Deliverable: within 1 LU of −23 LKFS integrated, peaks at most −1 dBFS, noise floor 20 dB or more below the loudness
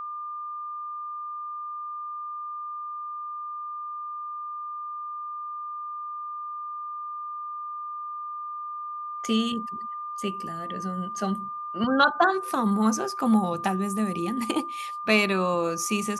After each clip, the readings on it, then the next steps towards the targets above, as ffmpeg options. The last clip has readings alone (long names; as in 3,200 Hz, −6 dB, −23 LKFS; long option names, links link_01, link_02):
interfering tone 1,200 Hz; level of the tone −32 dBFS; integrated loudness −29.0 LKFS; sample peak −7.0 dBFS; target loudness −23.0 LKFS
→ -af "bandreject=frequency=1200:width=30"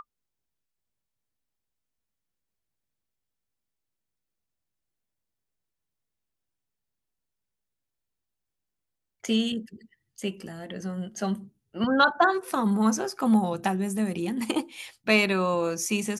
interfering tone none found; integrated loudness −26.0 LKFS; sample peak −6.5 dBFS; target loudness −23.0 LKFS
→ -af "volume=3dB"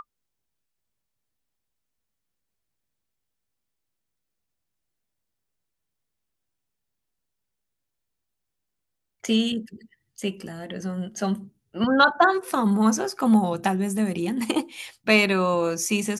integrated loudness −23.0 LKFS; sample peak −3.5 dBFS; background noise floor −81 dBFS